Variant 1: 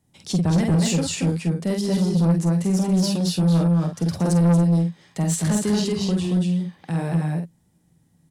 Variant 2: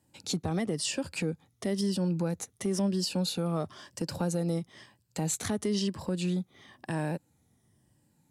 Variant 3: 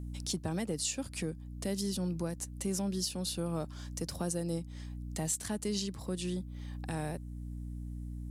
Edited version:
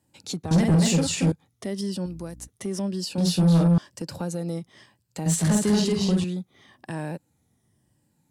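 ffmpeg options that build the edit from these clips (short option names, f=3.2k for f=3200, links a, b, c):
-filter_complex "[0:a]asplit=3[a][b][c];[1:a]asplit=5[d][e][f][g][h];[d]atrim=end=0.512[i];[a]atrim=start=0.508:end=1.322[j];[e]atrim=start=1.318:end=2.062[k];[2:a]atrim=start=2.058:end=2.482[l];[f]atrim=start=2.478:end=3.182[m];[b]atrim=start=3.178:end=3.782[n];[g]atrim=start=3.778:end=5.262[o];[c]atrim=start=5.258:end=6.242[p];[h]atrim=start=6.238[q];[i][j]acrossfade=d=0.004:c1=hsin:c2=hsin[r];[r][k]acrossfade=d=0.004:c1=hsin:c2=hsin[s];[s][l]acrossfade=d=0.004:c1=hsin:c2=hsin[t];[t][m]acrossfade=d=0.004:c1=hsin:c2=hsin[u];[u][n]acrossfade=d=0.004:c1=hsin:c2=hsin[v];[v][o]acrossfade=d=0.004:c1=hsin:c2=hsin[w];[w][p]acrossfade=d=0.004:c1=hsin:c2=hsin[x];[x][q]acrossfade=d=0.004:c1=hsin:c2=hsin"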